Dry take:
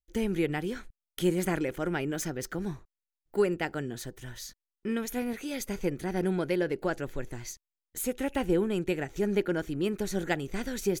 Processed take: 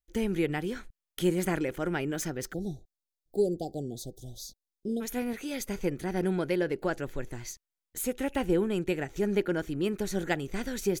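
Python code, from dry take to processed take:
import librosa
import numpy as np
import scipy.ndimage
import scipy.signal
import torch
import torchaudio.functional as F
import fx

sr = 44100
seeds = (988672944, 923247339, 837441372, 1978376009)

y = fx.cheby1_bandstop(x, sr, low_hz=770.0, high_hz=3500.0, order=5, at=(2.52, 5.0), fade=0.02)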